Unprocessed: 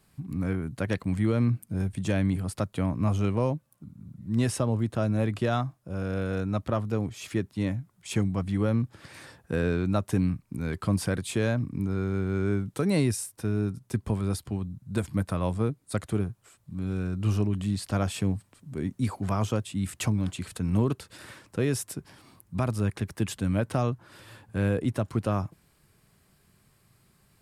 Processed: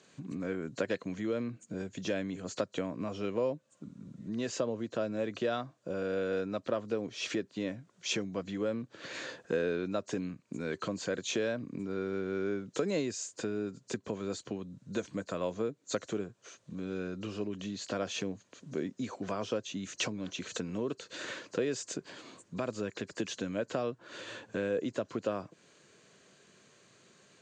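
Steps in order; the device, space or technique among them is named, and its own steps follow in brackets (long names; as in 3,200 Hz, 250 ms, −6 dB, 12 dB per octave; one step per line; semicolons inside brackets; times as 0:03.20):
hearing aid with frequency lowering (hearing-aid frequency compression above 4,000 Hz 1.5 to 1; downward compressor 3 to 1, threshold −37 dBFS, peak gain reduction 13 dB; loudspeaker in its box 320–6,700 Hz, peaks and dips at 500 Hz +4 dB, 830 Hz −9 dB, 1,200 Hz −5 dB, 2,100 Hz −4 dB, 5,200 Hz −3 dB)
level +8.5 dB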